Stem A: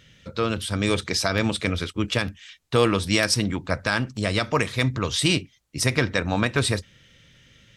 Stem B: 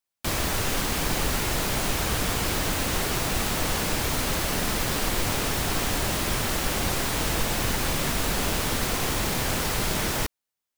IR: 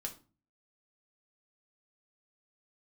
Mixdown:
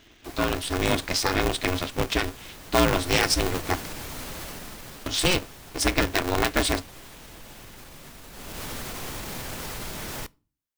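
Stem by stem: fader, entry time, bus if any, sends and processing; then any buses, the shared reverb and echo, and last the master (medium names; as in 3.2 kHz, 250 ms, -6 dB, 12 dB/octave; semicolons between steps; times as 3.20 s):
-1.0 dB, 0.00 s, muted 3.86–5.06 s, no send, polarity switched at an audio rate 180 Hz
2.89 s -17 dB -> 3.13 s -9 dB -> 4.40 s -9 dB -> 5.19 s -18 dB -> 8.28 s -18 dB -> 8.62 s -7.5 dB, 0.00 s, send -14 dB, peaking EQ 15 kHz +2.5 dB 0.29 oct; peak limiter -18.5 dBFS, peak gain reduction 5.5 dB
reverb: on, RT60 0.35 s, pre-delay 3 ms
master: none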